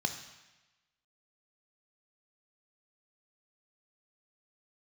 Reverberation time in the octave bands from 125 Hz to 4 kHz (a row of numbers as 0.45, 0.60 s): 1.1, 1.0, 1.1, 1.1, 1.2, 1.1 s